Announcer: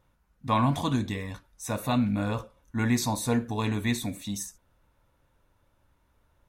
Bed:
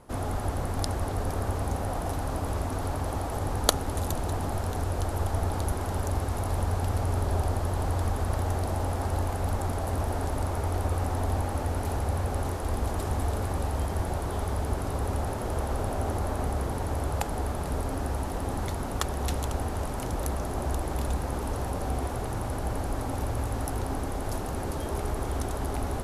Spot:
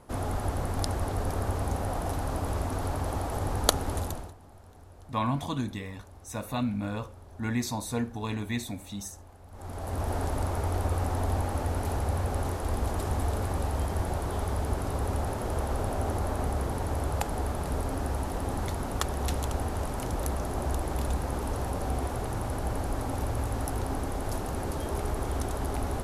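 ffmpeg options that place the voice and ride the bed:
-filter_complex "[0:a]adelay=4650,volume=-4.5dB[a];[1:a]volume=21dB,afade=t=out:st=3.94:d=0.4:silence=0.0841395,afade=t=in:st=9.51:d=0.63:silence=0.0841395[b];[a][b]amix=inputs=2:normalize=0"

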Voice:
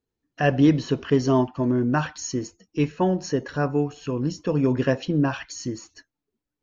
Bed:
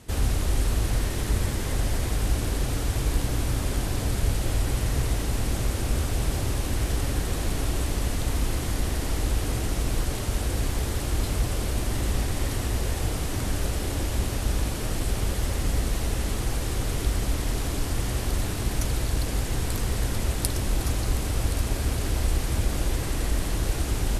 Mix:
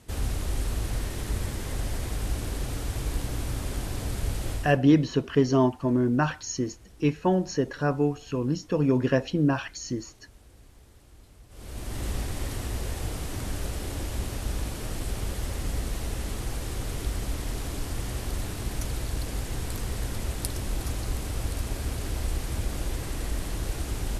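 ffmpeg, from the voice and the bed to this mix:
-filter_complex "[0:a]adelay=4250,volume=-1.5dB[a];[1:a]volume=17dB,afade=t=out:st=4.51:d=0.27:silence=0.0794328,afade=t=in:st=11.49:d=0.57:silence=0.0794328[b];[a][b]amix=inputs=2:normalize=0"

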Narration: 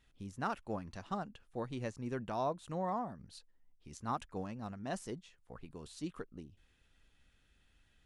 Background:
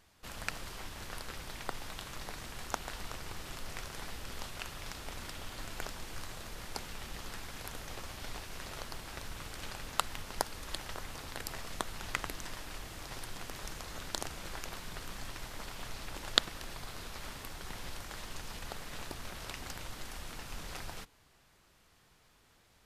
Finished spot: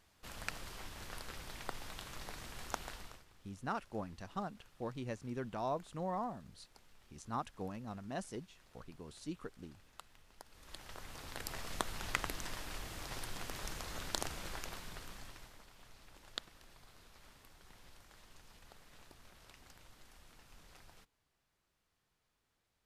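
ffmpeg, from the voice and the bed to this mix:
-filter_complex "[0:a]adelay=3250,volume=-2dB[a];[1:a]volume=18dB,afade=t=out:st=2.84:d=0.42:silence=0.11885,afade=t=in:st=10.44:d=1.34:silence=0.0794328,afade=t=out:st=14.3:d=1.34:silence=0.158489[b];[a][b]amix=inputs=2:normalize=0"

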